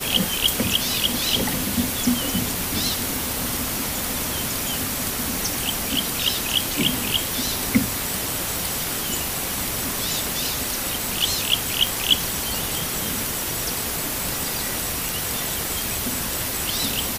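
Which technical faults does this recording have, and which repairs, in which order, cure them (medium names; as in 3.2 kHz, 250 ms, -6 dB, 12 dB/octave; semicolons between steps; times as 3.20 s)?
11.87 s: pop
15.09 s: pop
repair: de-click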